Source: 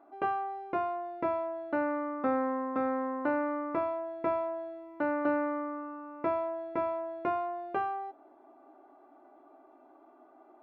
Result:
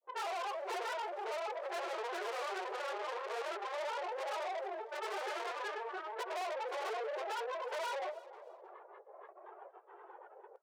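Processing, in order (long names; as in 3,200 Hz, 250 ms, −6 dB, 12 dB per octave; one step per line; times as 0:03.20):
random phases in long frames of 50 ms
Chebyshev low-pass filter 2,600 Hz, order 4
noise gate with hold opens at −49 dBFS
granular cloud 110 ms, grains 21 per second, pitch spread up and down by 7 semitones
tube saturation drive 45 dB, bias 0.35
linear-phase brick-wall high-pass 350 Hz
on a send: repeating echo 311 ms, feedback 29%, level −20 dB
on the sum: level +8 dB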